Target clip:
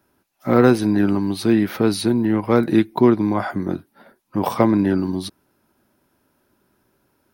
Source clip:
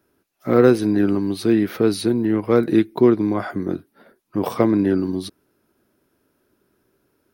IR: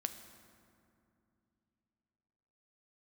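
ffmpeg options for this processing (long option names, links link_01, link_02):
-af "superequalizer=6b=0.708:7b=0.562:9b=1.58,volume=2.5dB"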